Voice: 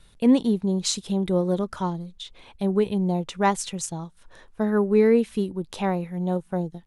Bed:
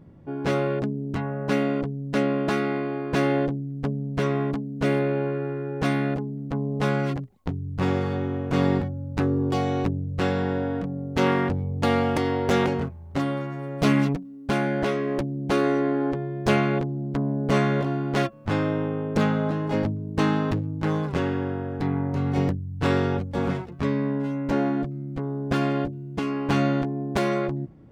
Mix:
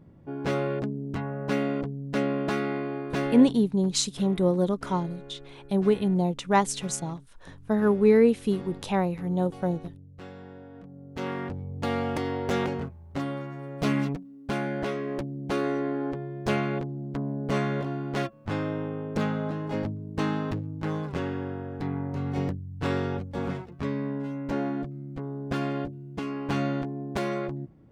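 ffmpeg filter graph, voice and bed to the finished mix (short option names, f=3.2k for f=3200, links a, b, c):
-filter_complex "[0:a]adelay=3100,volume=-0.5dB[a];[1:a]volume=10.5dB,afade=t=out:st=2.98:d=0.82:silence=0.158489,afade=t=in:st=10.71:d=1.41:silence=0.199526[b];[a][b]amix=inputs=2:normalize=0"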